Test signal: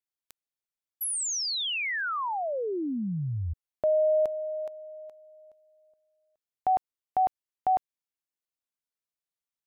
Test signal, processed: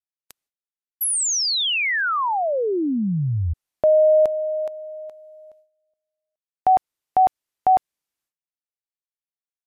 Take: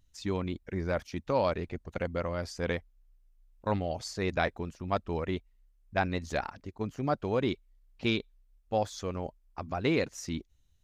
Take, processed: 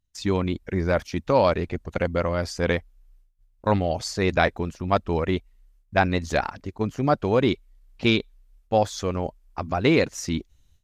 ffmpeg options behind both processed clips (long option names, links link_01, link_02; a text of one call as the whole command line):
ffmpeg -i in.wav -af "agate=range=-20dB:threshold=-56dB:ratio=3:release=247:detection=rms,volume=9dB" -ar 32000 -c:a libmp3lame -b:a 128k out.mp3